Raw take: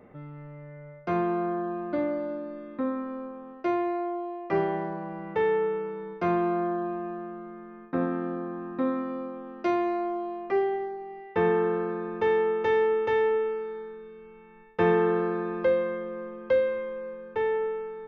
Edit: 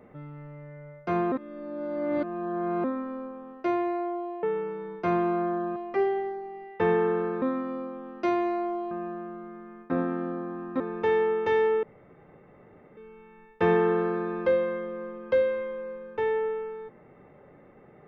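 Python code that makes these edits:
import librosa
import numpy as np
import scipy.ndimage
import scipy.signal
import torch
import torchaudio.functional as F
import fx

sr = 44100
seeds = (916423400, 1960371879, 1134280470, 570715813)

y = fx.edit(x, sr, fx.reverse_span(start_s=1.32, length_s=1.52),
    fx.cut(start_s=4.43, length_s=1.18),
    fx.swap(start_s=6.94, length_s=1.89, other_s=10.32, other_length_s=1.66),
    fx.room_tone_fill(start_s=13.01, length_s=1.14), tone=tone)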